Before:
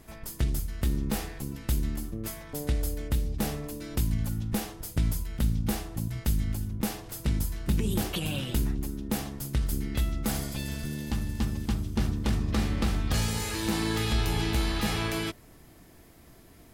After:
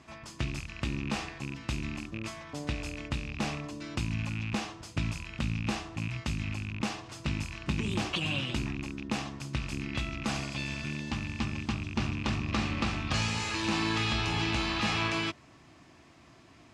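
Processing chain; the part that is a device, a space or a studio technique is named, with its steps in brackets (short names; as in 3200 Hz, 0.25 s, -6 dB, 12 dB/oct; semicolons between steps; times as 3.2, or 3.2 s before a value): car door speaker with a rattle (rattling part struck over -32 dBFS, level -32 dBFS; speaker cabinet 100–6800 Hz, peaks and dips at 190 Hz -5 dB, 450 Hz -8 dB, 1100 Hz +6 dB, 2600 Hz +6 dB)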